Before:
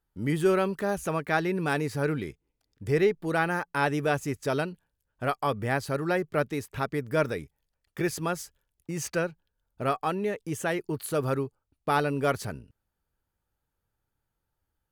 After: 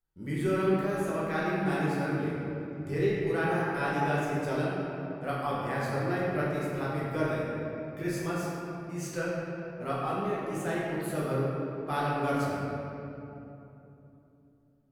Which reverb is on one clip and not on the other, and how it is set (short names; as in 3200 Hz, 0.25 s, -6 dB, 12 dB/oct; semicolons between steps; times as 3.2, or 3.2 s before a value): shoebox room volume 130 m³, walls hard, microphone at 1 m; gain -11 dB